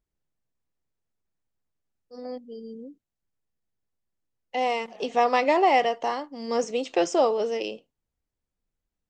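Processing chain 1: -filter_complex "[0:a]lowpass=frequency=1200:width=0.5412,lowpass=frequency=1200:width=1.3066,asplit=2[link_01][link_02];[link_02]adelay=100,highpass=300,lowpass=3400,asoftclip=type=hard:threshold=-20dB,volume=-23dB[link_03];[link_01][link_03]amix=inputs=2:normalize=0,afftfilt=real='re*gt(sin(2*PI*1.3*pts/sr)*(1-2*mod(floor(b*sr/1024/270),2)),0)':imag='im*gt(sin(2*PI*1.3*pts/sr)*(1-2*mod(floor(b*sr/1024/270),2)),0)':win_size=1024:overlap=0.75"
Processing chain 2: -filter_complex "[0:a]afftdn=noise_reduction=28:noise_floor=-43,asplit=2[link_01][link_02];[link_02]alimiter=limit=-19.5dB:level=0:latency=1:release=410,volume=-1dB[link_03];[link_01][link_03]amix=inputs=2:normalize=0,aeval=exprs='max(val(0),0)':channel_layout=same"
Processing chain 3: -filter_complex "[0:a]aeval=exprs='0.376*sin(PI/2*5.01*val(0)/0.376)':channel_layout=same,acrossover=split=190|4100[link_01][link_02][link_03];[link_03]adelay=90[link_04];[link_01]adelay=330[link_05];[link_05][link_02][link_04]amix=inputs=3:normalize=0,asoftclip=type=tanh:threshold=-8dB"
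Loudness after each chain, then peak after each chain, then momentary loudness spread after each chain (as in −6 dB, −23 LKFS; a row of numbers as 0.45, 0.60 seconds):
−28.5, −26.0, −17.0 LKFS; −13.0, −7.0, −8.5 dBFS; 20, 17, 12 LU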